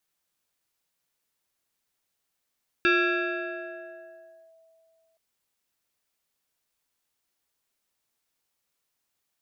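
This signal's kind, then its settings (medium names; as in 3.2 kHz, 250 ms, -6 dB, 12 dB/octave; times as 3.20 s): FM tone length 2.32 s, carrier 653 Hz, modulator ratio 1.54, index 2.3, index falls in 1.68 s linear, decay 2.71 s, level -17 dB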